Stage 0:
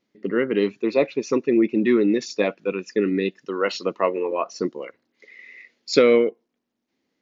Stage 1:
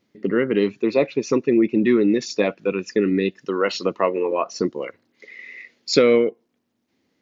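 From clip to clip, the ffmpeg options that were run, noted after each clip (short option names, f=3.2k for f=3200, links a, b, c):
-filter_complex "[0:a]equalizer=f=96:t=o:w=1.4:g=7.5,asplit=2[a][b];[b]acompressor=threshold=-26dB:ratio=6,volume=3dB[c];[a][c]amix=inputs=2:normalize=0,volume=-2.5dB"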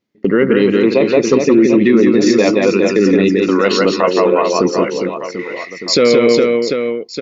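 -filter_complex "[0:a]agate=range=-16dB:threshold=-40dB:ratio=16:detection=peak,asplit=2[a][b];[b]aecho=0:1:170|408|741.2|1208|1861:0.631|0.398|0.251|0.158|0.1[c];[a][c]amix=inputs=2:normalize=0,alimiter=level_in=10dB:limit=-1dB:release=50:level=0:latency=1,volume=-1dB"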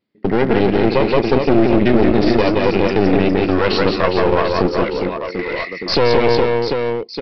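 -af "dynaudnorm=f=280:g=3:m=11.5dB,aresample=11025,aeval=exprs='clip(val(0),-1,0.0944)':c=same,aresample=44100,volume=-1dB"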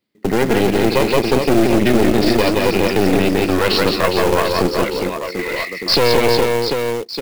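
-filter_complex "[0:a]highshelf=f=3.2k:g=8.5,acrossover=split=240[a][b];[b]acrusher=bits=3:mode=log:mix=0:aa=0.000001[c];[a][c]amix=inputs=2:normalize=0,volume=-1dB"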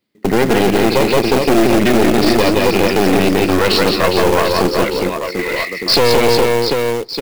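-filter_complex "[0:a]asplit=2[a][b];[b]adelay=402.3,volume=-28dB,highshelf=f=4k:g=-9.05[c];[a][c]amix=inputs=2:normalize=0,asplit=2[d][e];[e]aeval=exprs='(mod(2.37*val(0)+1,2)-1)/2.37':c=same,volume=-7.5dB[f];[d][f]amix=inputs=2:normalize=0"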